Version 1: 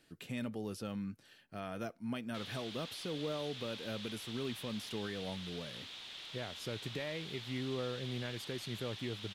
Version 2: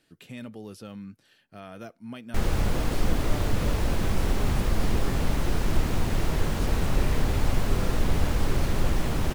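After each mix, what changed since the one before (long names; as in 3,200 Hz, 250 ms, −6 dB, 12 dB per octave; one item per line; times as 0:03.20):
background: remove resonant band-pass 3,500 Hz, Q 4.6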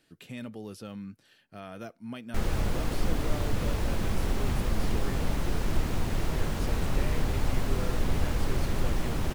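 background −3.5 dB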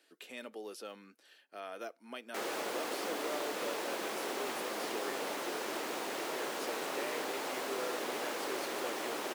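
master: add high-pass filter 350 Hz 24 dB per octave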